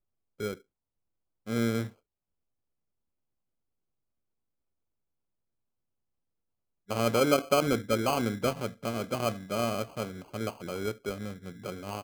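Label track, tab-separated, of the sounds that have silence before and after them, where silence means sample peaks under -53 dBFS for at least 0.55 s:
1.460000	1.930000	sound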